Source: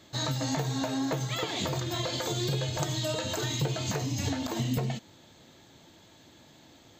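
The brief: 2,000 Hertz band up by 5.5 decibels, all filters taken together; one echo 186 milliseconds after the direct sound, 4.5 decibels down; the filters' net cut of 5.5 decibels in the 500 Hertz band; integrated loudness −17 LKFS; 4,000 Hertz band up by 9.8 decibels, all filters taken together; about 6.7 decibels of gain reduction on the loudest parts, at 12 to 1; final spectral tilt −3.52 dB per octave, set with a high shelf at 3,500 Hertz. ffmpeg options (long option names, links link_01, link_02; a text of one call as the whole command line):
ffmpeg -i in.wav -af "equalizer=frequency=500:width_type=o:gain=-8,equalizer=frequency=2000:width_type=o:gain=3.5,highshelf=frequency=3500:gain=7,equalizer=frequency=4000:width_type=o:gain=6,acompressor=threshold=-28dB:ratio=12,aecho=1:1:186:0.596,volume=12dB" out.wav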